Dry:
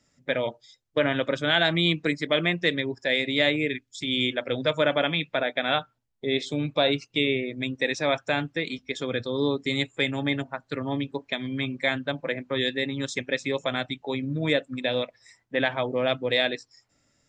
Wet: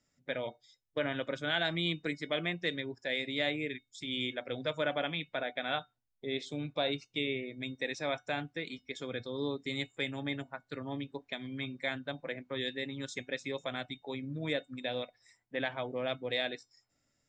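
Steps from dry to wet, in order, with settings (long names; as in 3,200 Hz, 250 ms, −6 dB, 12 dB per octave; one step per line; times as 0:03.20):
tuned comb filter 730 Hz, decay 0.2 s, harmonics all, mix 60%
level −2.5 dB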